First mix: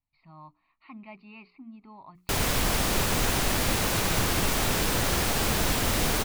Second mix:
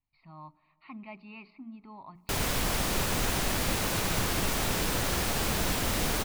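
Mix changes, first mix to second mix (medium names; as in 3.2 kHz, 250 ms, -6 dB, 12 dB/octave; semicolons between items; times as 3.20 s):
background -5.0 dB; reverb: on, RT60 2.9 s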